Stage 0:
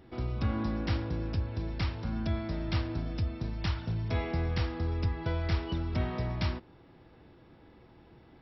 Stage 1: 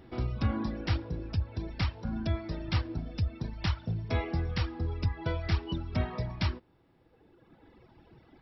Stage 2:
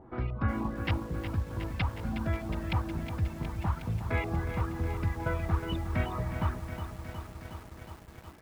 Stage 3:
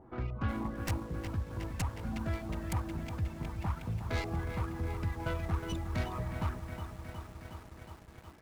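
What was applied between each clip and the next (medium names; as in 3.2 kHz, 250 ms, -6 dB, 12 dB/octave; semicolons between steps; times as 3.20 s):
reverb removal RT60 1.9 s; trim +2.5 dB
LFO low-pass saw up 3.3 Hz 820–2900 Hz; bit-crushed delay 364 ms, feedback 80%, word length 8-bit, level -9 dB; trim -1 dB
tracing distortion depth 0.37 ms; in parallel at -9 dB: overload inside the chain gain 27.5 dB; on the sum: trim -6 dB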